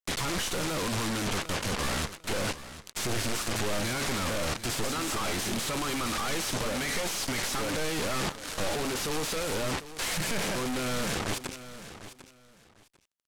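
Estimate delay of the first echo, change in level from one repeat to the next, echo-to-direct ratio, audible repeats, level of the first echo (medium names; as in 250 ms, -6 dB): 748 ms, -13.5 dB, -14.0 dB, 2, -14.0 dB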